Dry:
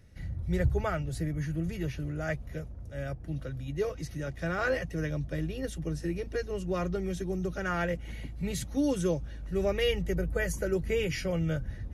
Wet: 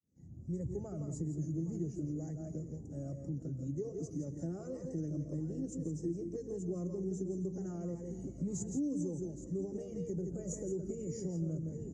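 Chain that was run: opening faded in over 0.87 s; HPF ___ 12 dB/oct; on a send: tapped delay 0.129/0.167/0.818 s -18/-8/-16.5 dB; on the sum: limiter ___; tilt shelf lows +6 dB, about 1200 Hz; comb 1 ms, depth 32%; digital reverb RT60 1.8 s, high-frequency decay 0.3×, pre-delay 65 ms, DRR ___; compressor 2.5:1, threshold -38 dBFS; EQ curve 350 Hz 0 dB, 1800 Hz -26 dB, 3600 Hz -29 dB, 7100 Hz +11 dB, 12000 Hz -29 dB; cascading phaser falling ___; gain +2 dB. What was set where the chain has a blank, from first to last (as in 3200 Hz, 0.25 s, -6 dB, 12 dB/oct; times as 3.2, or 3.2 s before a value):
250 Hz, -24.5 dBFS, 18.5 dB, 1.9 Hz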